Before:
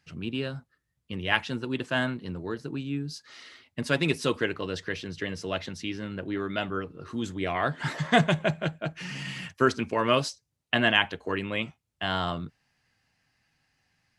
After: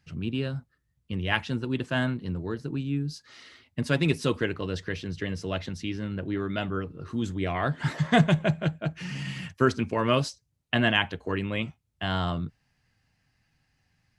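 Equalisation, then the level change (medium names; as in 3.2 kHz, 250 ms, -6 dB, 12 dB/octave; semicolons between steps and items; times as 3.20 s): bass shelf 190 Hz +11 dB; -2.0 dB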